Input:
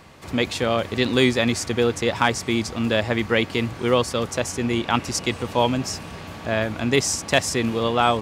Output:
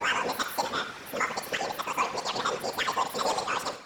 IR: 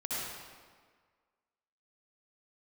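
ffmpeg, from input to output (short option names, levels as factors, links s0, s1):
-filter_complex "[0:a]areverse,asplit=2[s0][s1];[1:a]atrim=start_sample=2205[s2];[s1][s2]afir=irnorm=-1:irlink=0,volume=0.211[s3];[s0][s3]amix=inputs=2:normalize=0,asplit=2[s4][s5];[s5]highpass=f=720:p=1,volume=4.47,asoftclip=type=tanh:threshold=0.75[s6];[s4][s6]amix=inputs=2:normalize=0,lowpass=f=1200:p=1,volume=0.501,asetrate=93933,aresample=44100,afftfilt=real='hypot(re,im)*cos(2*PI*random(0))':imag='hypot(re,im)*sin(2*PI*random(1))':win_size=512:overlap=0.75,volume=0.596"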